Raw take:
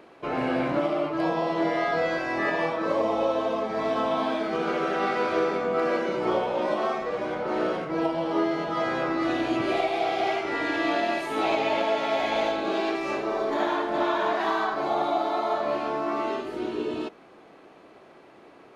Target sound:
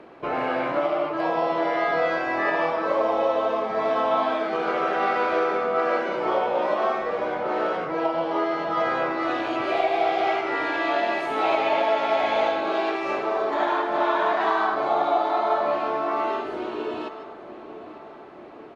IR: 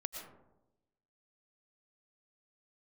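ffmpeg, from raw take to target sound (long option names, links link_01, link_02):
-filter_complex "[0:a]aemphasis=mode=reproduction:type=75kf,aecho=1:1:896|1792|2688|3584|4480:0.119|0.0642|0.0347|0.0187|0.0101,acrossover=split=470|3100[link_01][link_02][link_03];[link_01]acompressor=threshold=-41dB:ratio=6[link_04];[link_04][link_02][link_03]amix=inputs=3:normalize=0[link_05];[1:a]atrim=start_sample=2205,afade=type=out:start_time=0.15:duration=0.01,atrim=end_sample=7056,asetrate=28665,aresample=44100[link_06];[link_05][link_06]afir=irnorm=-1:irlink=0,volume=5.5dB"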